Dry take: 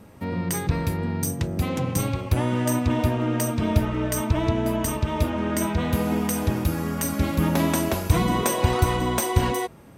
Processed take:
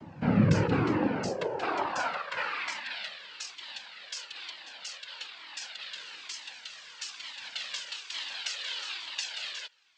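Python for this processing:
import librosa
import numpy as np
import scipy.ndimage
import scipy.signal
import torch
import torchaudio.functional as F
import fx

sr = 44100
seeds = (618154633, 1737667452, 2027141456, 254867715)

y = fx.filter_sweep_highpass(x, sr, from_hz=130.0, to_hz=3800.0, start_s=0.18, end_s=3.24, q=2.0)
y = fx.noise_vocoder(y, sr, seeds[0], bands=8)
y = fx.air_absorb(y, sr, metres=170.0)
y = fx.comb_cascade(y, sr, direction='falling', hz=1.1)
y = y * 10.0 ** (6.5 / 20.0)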